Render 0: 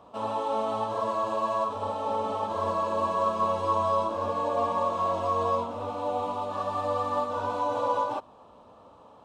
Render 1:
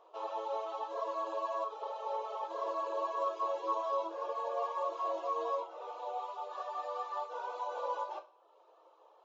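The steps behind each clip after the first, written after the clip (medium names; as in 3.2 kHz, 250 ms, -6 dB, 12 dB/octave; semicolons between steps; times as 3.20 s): reverb removal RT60 0.73 s; two-slope reverb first 0.3 s, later 1.5 s, from -21 dB, DRR 6 dB; FFT band-pass 320–7400 Hz; trim -8.5 dB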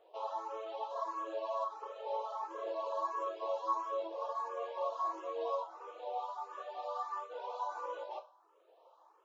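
barber-pole phaser +1.5 Hz; trim +1 dB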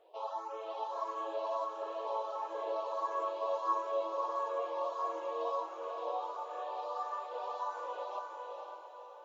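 echo that smears into a reverb 511 ms, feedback 47%, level -3.5 dB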